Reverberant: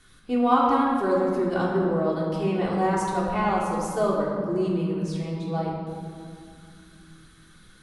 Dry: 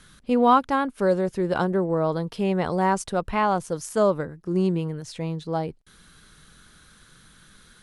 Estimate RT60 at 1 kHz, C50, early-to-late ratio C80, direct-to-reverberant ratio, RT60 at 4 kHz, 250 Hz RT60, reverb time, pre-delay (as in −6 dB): 2.2 s, 1.0 dB, 2.5 dB, −5.0 dB, 1.3 s, 3.5 s, 2.3 s, 3 ms